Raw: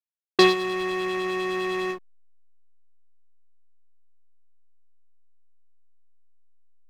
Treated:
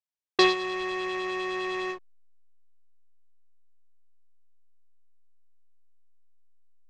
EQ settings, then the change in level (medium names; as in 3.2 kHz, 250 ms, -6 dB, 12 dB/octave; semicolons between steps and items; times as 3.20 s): low-pass 7.6 kHz 24 dB/octave; peaking EQ 210 Hz -14.5 dB 0.7 oct; band-stop 1.4 kHz, Q 15; -2.0 dB